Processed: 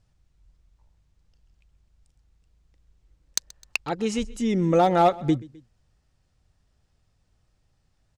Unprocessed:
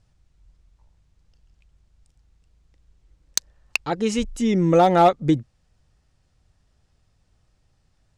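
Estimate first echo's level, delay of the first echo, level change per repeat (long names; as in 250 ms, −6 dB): −22.0 dB, 129 ms, −5.0 dB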